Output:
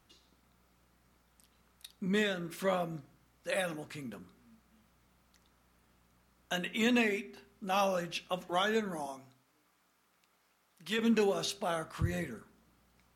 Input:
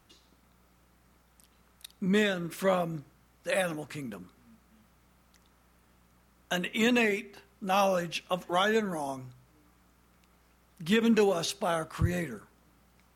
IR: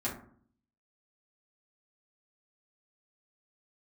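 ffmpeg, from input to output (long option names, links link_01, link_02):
-filter_complex "[0:a]asettb=1/sr,asplit=3[link_01][link_02][link_03];[link_01]atrim=end=9.064[link_04];[link_02]atrim=start=9.06:end=10.99,asetpts=PTS-STARTPTS,afade=type=in:duration=0.004:curve=qsin,afade=type=out:start_time=1.926:duration=0.004:curve=qsin,highpass=frequency=540:poles=1[link_05];[link_03]atrim=start=10.986[link_06];[link_04][link_05]acrossfade=duration=0.004:curve1=hsin:curve2=qsin[link_07];[link_07][link_06]acrossfade=duration=0.004:curve1=qsin:curve2=hsin,asplit=2[link_08][link_09];[link_09]equalizer=frequency=4000:width_type=o:width=2.4:gain=13.5[link_10];[1:a]atrim=start_sample=2205[link_11];[link_10][link_11]afir=irnorm=-1:irlink=0,volume=-20dB[link_12];[link_08][link_12]amix=inputs=2:normalize=0,volume=-5.5dB"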